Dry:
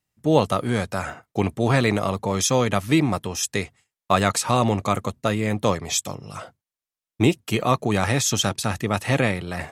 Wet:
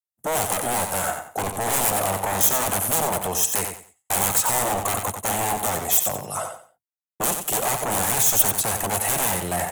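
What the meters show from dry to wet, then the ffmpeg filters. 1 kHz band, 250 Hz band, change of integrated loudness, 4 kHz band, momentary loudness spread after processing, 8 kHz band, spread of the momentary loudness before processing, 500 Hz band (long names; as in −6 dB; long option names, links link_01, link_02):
+1.0 dB, −10.5 dB, +1.0 dB, −2.5 dB, 9 LU, +7.0 dB, 9 LU, −4.0 dB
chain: -filter_complex "[0:a]bandreject=frequency=2400:width=12,agate=range=-33dB:threshold=-49dB:ratio=3:detection=peak,acrossover=split=140|1900[link_01][link_02][link_03];[link_02]alimiter=limit=-15dB:level=0:latency=1[link_04];[link_01][link_04][link_03]amix=inputs=3:normalize=0,acrossover=split=5100[link_05][link_06];[link_06]acompressor=threshold=-40dB:ratio=4:attack=1:release=60[link_07];[link_05][link_07]amix=inputs=2:normalize=0,lowshelf=frequency=240:gain=-5.5,aeval=exprs='0.0473*(abs(mod(val(0)/0.0473+3,4)-2)-1)':channel_layout=same,equalizer=frequency=750:width=1.3:gain=10.5,aecho=1:1:91|182|273:0.447|0.112|0.0279,aexciter=amount=8.5:drive=4.9:freq=7000,volume=1.5dB"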